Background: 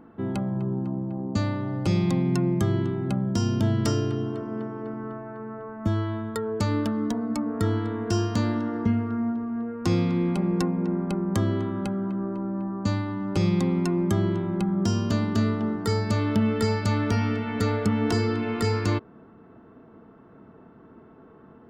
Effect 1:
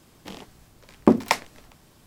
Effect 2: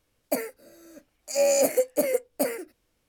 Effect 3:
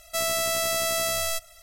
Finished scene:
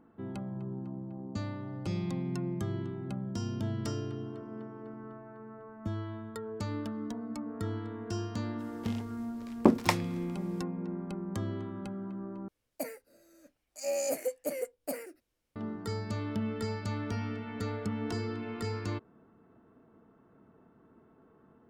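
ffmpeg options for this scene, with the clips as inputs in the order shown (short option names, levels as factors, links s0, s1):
-filter_complex "[0:a]volume=0.282,asplit=2[s0][s1];[s0]atrim=end=12.484[s2];[2:a]atrim=end=3.08,asetpts=PTS-STARTPTS,volume=0.299[s3];[s1]atrim=start=15.556[s4];[1:a]atrim=end=2.06,asetpts=PTS-STARTPTS,volume=0.531,afade=t=in:d=0.02,afade=t=out:st=2.04:d=0.02,adelay=378378S[s5];[s2][s3]acrossfade=d=0.004:c1=hsin:c2=hsin[s6];[s6][s4]acrossfade=d=0.004:c1=hsin:c2=hsin[s7];[s7][s5]amix=inputs=2:normalize=0"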